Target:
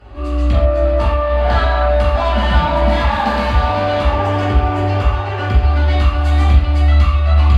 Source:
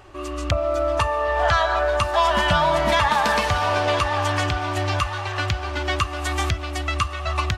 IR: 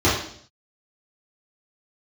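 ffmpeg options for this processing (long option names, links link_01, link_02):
-filter_complex "[0:a]asoftclip=type=tanh:threshold=-19.5dB,asettb=1/sr,asplit=3[link_01][link_02][link_03];[link_01]atrim=end=4.064[link_04];[link_02]atrim=start=4.06:end=5.6,asetpts=PTS-STARTPTS,afade=type=in:duration=0.004:curve=qsin,afade=type=out:start_time=1.536:duration=0.004:curve=qsin,equalizer=frequency=400:width_type=o:width=0.33:gain=12,equalizer=frequency=4000:width_type=o:width=0.33:gain=-8,equalizer=frequency=10000:width_type=o:width=0.33:gain=-5[link_05];[link_03]atrim=start=5.596[link_06];[link_04][link_05]acrossfade=duration=0.004:curve1=hsin:curve2=qsin[link_07];[link_07][link_06]acrossfade=duration=0.004:curve1=qsin:curve2=hsin[link_08];[1:a]atrim=start_sample=2205,afade=type=out:start_time=0.15:duration=0.01,atrim=end_sample=7056,asetrate=29988,aresample=44100[link_09];[link_08][link_09]afir=irnorm=-1:irlink=0,volume=-16.5dB"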